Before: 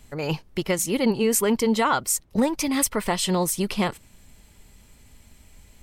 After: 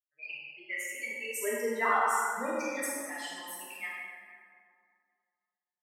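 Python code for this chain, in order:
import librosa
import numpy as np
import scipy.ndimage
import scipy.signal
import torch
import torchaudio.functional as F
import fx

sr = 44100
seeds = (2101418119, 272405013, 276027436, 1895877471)

y = fx.bin_expand(x, sr, power=3.0)
y = fx.highpass(y, sr, hz=fx.steps((0.0, 1400.0), (1.39, 610.0), (2.84, 1500.0)), slope=12)
y = fx.high_shelf_res(y, sr, hz=2900.0, db=-7.0, q=3.0)
y = fx.doubler(y, sr, ms=47.0, db=-12)
y = y + 10.0 ** (-9.5 / 20.0) * np.pad(y, (int(82 * sr / 1000.0), 0))[:len(y)]
y = fx.rev_plate(y, sr, seeds[0], rt60_s=2.2, hf_ratio=0.5, predelay_ms=0, drr_db=-7.5)
y = F.gain(torch.from_numpy(y), -7.5).numpy()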